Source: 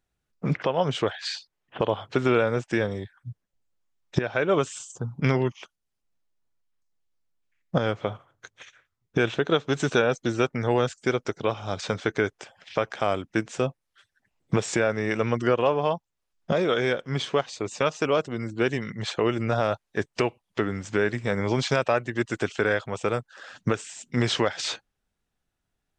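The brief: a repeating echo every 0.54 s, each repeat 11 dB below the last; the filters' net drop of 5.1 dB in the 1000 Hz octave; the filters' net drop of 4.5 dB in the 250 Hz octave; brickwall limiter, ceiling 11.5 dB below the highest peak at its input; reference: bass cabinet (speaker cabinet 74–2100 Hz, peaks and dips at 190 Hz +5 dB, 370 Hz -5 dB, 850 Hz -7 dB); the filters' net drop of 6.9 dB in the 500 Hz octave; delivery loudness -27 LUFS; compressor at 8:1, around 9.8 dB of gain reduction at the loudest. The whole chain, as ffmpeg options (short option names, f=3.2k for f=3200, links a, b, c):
-af "equalizer=f=250:t=o:g=-5,equalizer=f=500:t=o:g=-4,equalizer=f=1k:t=o:g=-3,acompressor=threshold=-30dB:ratio=8,alimiter=level_in=1.5dB:limit=-24dB:level=0:latency=1,volume=-1.5dB,highpass=f=74:w=0.5412,highpass=f=74:w=1.3066,equalizer=f=190:t=q:w=4:g=5,equalizer=f=370:t=q:w=4:g=-5,equalizer=f=850:t=q:w=4:g=-7,lowpass=f=2.1k:w=0.5412,lowpass=f=2.1k:w=1.3066,aecho=1:1:540|1080|1620:0.282|0.0789|0.0221,volume=13.5dB"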